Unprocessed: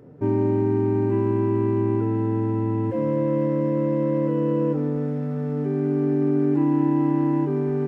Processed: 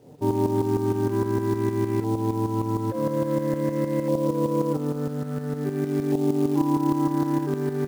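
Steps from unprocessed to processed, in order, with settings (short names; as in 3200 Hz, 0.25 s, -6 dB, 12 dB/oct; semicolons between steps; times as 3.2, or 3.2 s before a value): tremolo saw up 6.5 Hz, depth 65%; LFO low-pass saw up 0.49 Hz 810–2300 Hz; companded quantiser 6-bit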